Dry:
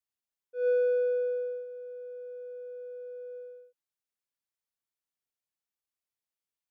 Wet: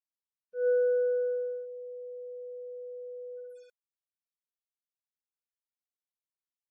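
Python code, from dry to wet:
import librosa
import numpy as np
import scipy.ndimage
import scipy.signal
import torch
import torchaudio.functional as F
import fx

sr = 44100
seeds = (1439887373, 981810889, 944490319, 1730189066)

y = fx.quant_dither(x, sr, seeds[0], bits=10, dither='none')
y = fx.spec_gate(y, sr, threshold_db=-30, keep='strong')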